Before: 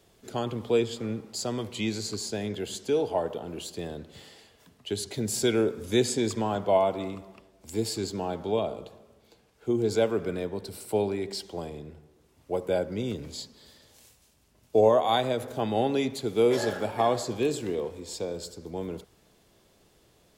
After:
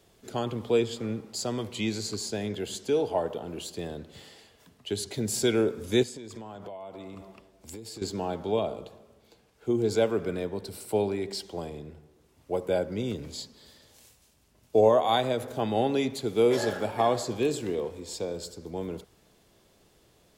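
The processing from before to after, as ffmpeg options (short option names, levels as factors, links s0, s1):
-filter_complex "[0:a]asettb=1/sr,asplit=3[s0][s1][s2];[s0]atrim=end=6.034[s3];[s1]atrim=start=6.03:end=8.02,asetpts=PTS-STARTPTS,afade=t=in:d=0.004:c=qsin,afade=t=out:st=1.986:d=0.004:c=qsin,acompressor=threshold=0.0141:ratio=16:attack=3.2:release=140:knee=1:detection=peak[s4];[s2]atrim=start=8.016[s5];[s3][s4]acrossfade=d=0.004:c1=hsin:c2=qsin[s6];[s6][s5]acrossfade=d=0.004:c1=qsin:c2=hsin"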